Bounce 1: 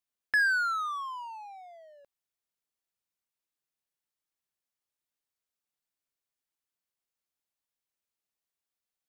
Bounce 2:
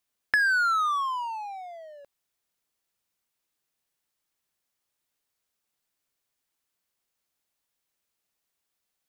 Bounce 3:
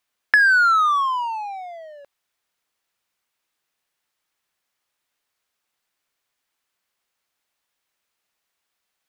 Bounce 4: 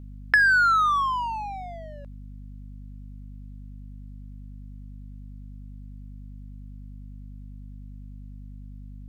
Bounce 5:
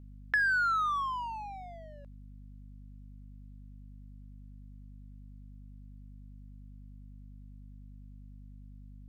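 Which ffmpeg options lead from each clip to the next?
-af "acompressor=threshold=-29dB:ratio=6,volume=8.5dB"
-af "equalizer=f=1.6k:w=0.33:g=8"
-af "aeval=exprs='val(0)+0.0158*(sin(2*PI*50*n/s)+sin(2*PI*2*50*n/s)/2+sin(2*PI*3*50*n/s)/3+sin(2*PI*4*50*n/s)/4+sin(2*PI*5*50*n/s)/5)':c=same,volume=-3.5dB"
-af "asoftclip=type=tanh:threshold=-7.5dB,volume=-8.5dB"

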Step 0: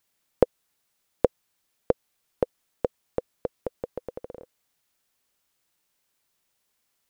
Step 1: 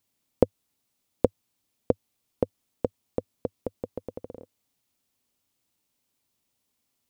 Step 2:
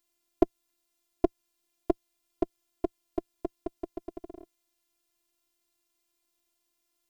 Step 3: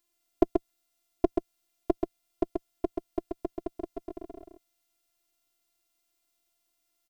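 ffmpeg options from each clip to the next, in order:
-af "equalizer=f=100:t=o:w=0.67:g=9,equalizer=f=250:t=o:w=0.67:g=9,equalizer=f=1.6k:t=o:w=0.67:g=-6,volume=-2.5dB"
-af "afftfilt=real='hypot(re,im)*cos(PI*b)':imag='0':win_size=512:overlap=0.75,volume=2.5dB"
-af "aecho=1:1:132:0.596"

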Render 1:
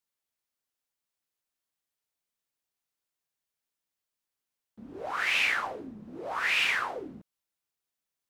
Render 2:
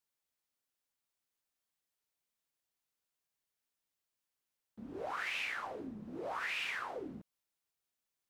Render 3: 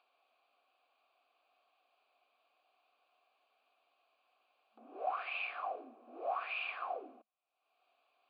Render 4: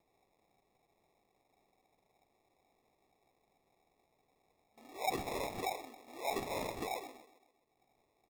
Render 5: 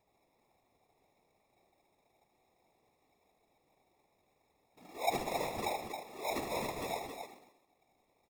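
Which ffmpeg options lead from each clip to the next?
-af "acompressor=threshold=-36dB:ratio=4,volume=-1.5dB"
-filter_complex "[0:a]acompressor=mode=upward:threshold=-50dB:ratio=2.5,asplit=3[a][b][c];[a]bandpass=f=730:t=q:w=8,volume=0dB[d];[b]bandpass=f=1.09k:t=q:w=8,volume=-6dB[e];[c]bandpass=f=2.44k:t=q:w=8,volume=-9dB[f];[d][e][f]amix=inputs=3:normalize=0,afftfilt=real='re*between(b*sr/4096,220,4900)':imag='im*between(b*sr/4096,220,4900)':win_size=4096:overlap=0.75,volume=10.5dB"
-filter_complex "[0:a]asplit=2[a][b];[b]adelay=131,lowpass=f=1.6k:p=1,volume=-14.5dB,asplit=2[c][d];[d]adelay=131,lowpass=f=1.6k:p=1,volume=0.51,asplit=2[e][f];[f]adelay=131,lowpass=f=1.6k:p=1,volume=0.51,asplit=2[g][h];[h]adelay=131,lowpass=f=1.6k:p=1,volume=0.51,asplit=2[i][j];[j]adelay=131,lowpass=f=1.6k:p=1,volume=0.51[k];[a][c][e][g][i][k]amix=inputs=6:normalize=0,acrusher=samples=29:mix=1:aa=0.000001,volume=1dB"
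-filter_complex "[0:a]afftfilt=real='hypot(re,im)*cos(2*PI*random(0))':imag='hypot(re,im)*sin(2*PI*random(1))':win_size=512:overlap=0.75,asplit=2[a][b];[b]aecho=0:1:75.8|271.1:0.398|0.447[c];[a][c]amix=inputs=2:normalize=0,volume=6.5dB"

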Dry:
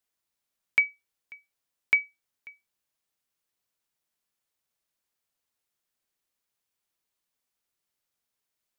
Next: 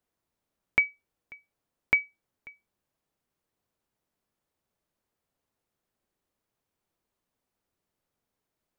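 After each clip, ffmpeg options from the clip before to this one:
-af "tiltshelf=f=1.3k:g=8,volume=3dB"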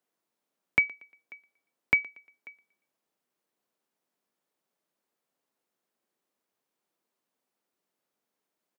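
-filter_complex "[0:a]aecho=1:1:117|234|351:0.075|0.0285|0.0108,acrossover=split=170[a][b];[a]acrusher=bits=5:mix=0:aa=0.000001[c];[c][b]amix=inputs=2:normalize=0"

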